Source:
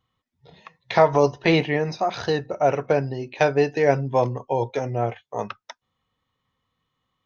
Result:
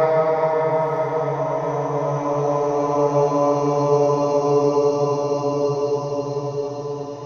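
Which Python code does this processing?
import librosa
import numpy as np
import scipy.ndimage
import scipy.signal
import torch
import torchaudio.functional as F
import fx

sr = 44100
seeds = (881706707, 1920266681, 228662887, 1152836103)

y = fx.paulstretch(x, sr, seeds[0], factor=24.0, window_s=0.25, from_s=1.05)
y = fx.echo_diffused(y, sr, ms=969, feedback_pct=57, wet_db=-9)
y = F.gain(torch.from_numpy(y), -2.5).numpy()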